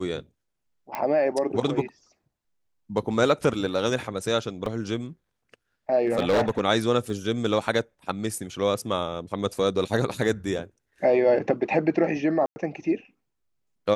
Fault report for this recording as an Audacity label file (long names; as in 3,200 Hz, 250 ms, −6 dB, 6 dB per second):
0.950000	0.950000	click −16 dBFS
4.660000	4.660000	drop-out 2.8 ms
6.050000	6.600000	clipping −17 dBFS
7.100000	7.100000	drop-out 2 ms
12.460000	12.560000	drop-out 100 ms